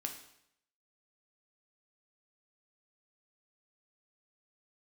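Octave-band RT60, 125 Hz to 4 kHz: 0.75, 0.75, 0.75, 0.75, 0.70, 0.70 seconds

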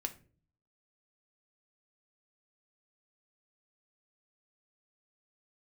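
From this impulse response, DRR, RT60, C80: 6.0 dB, 0.40 s, 21.0 dB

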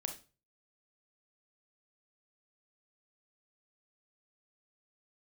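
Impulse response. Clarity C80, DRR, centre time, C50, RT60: 16.0 dB, 4.5 dB, 14 ms, 9.5 dB, non-exponential decay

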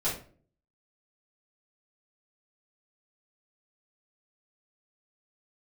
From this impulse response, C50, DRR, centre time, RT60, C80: 6.5 dB, −10.5 dB, 31 ms, 0.45 s, 12.0 dB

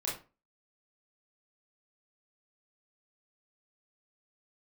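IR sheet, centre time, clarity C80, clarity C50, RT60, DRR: 38 ms, 12.0 dB, 6.0 dB, 0.35 s, −5.5 dB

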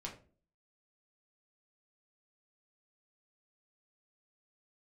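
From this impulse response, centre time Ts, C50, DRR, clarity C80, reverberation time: 19 ms, 9.5 dB, −2.0 dB, 14.5 dB, 0.40 s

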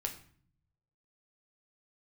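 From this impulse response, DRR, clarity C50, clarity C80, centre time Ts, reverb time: 2.0 dB, 11.0 dB, 15.0 dB, 13 ms, 0.50 s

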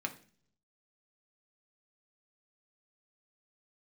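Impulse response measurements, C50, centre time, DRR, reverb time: 14.0 dB, 7 ms, 3.0 dB, 0.45 s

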